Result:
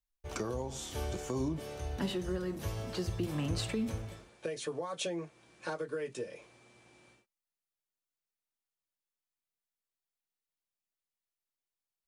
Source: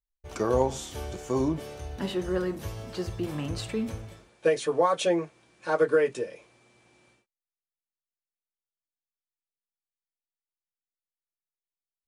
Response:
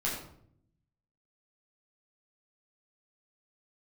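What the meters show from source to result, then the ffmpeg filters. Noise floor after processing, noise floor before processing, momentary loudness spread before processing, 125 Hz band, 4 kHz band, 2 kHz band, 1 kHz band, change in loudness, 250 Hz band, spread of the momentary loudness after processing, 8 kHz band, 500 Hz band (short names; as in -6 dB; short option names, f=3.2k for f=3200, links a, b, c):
under -85 dBFS, under -85 dBFS, 14 LU, -2.5 dB, -3.0 dB, -9.0 dB, -12.5 dB, -9.0 dB, -6.0 dB, 9 LU, -3.0 dB, -11.5 dB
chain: -filter_complex "[0:a]alimiter=limit=-21.5dB:level=0:latency=1:release=409,acrossover=split=240|3000[a][b][c];[b]acompressor=threshold=-36dB:ratio=6[d];[a][d][c]amix=inputs=3:normalize=0"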